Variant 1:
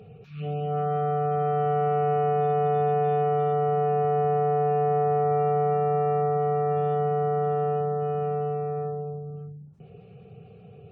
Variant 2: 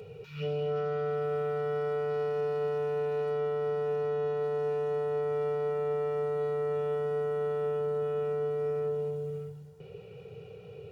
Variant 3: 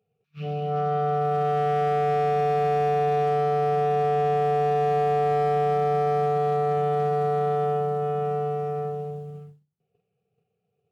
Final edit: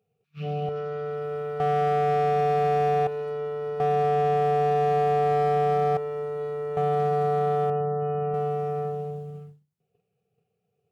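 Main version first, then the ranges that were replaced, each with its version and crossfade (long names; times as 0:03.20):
3
0:00.69–0:01.60: punch in from 2
0:03.07–0:03.80: punch in from 2
0:05.97–0:06.77: punch in from 2
0:07.70–0:08.34: punch in from 1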